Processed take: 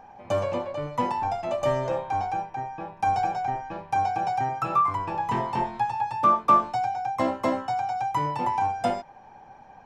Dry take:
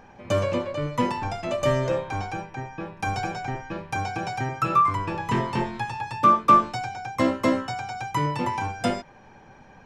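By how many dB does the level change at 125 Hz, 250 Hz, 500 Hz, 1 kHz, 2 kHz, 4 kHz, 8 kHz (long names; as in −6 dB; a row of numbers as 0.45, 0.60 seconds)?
−6.5 dB, −6.0 dB, −1.5 dB, +1.0 dB, −5.5 dB, −6.5 dB, can't be measured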